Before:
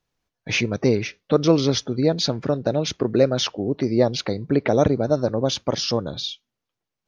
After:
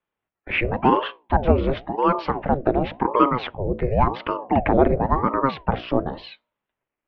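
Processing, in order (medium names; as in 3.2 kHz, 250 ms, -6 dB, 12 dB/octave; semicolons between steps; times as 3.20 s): mistuned SSB -66 Hz 170–2700 Hz; level rider gain up to 8 dB; hum notches 60/120/180/240/300/360/420/480/540 Hz; ring modulator with a swept carrier 460 Hz, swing 70%, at 0.93 Hz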